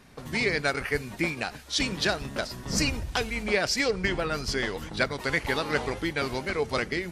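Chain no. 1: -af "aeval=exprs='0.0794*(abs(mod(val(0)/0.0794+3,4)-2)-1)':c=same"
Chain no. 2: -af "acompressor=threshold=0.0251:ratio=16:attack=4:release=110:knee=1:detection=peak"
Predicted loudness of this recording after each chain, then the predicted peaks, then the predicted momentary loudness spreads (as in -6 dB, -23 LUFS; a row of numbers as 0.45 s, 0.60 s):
-30.0 LUFS, -36.5 LUFS; -22.0 dBFS, -16.0 dBFS; 5 LU, 2 LU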